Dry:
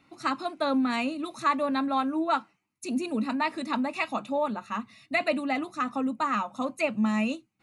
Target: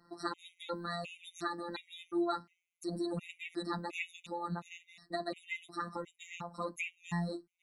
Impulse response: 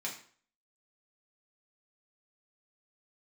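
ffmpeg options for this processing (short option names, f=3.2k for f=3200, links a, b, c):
-filter_complex "[0:a]acrossover=split=370|1400|3700[a][b][c][d];[a]acompressor=threshold=-30dB:ratio=4[e];[b]acompressor=threshold=-41dB:ratio=4[f];[c]acompressor=threshold=-38dB:ratio=4[g];[d]acompressor=threshold=-46dB:ratio=4[h];[e][f][g][h]amix=inputs=4:normalize=0,afftfilt=real='hypot(re,im)*cos(PI*b)':imag='0':win_size=1024:overlap=0.75,afftfilt=real='re*gt(sin(2*PI*1.4*pts/sr)*(1-2*mod(floor(b*sr/1024/1900),2)),0)':imag='im*gt(sin(2*PI*1.4*pts/sr)*(1-2*mod(floor(b*sr/1024/1900),2)),0)':win_size=1024:overlap=0.75,volume=2dB"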